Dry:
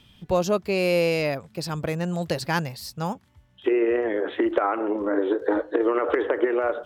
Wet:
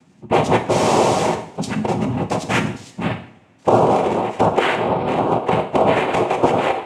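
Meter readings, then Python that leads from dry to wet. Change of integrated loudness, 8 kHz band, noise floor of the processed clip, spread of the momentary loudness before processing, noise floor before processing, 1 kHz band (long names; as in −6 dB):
+6.0 dB, +9.5 dB, −52 dBFS, 9 LU, −59 dBFS, +12.5 dB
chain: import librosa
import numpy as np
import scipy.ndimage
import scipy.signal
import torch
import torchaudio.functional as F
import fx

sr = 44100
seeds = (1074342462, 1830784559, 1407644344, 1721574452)

y = fx.wiener(x, sr, points=15)
y = fx.noise_vocoder(y, sr, seeds[0], bands=4)
y = fx.rev_double_slope(y, sr, seeds[1], early_s=0.55, late_s=3.7, knee_db=-28, drr_db=5.0)
y = y * 10.0 ** (5.5 / 20.0)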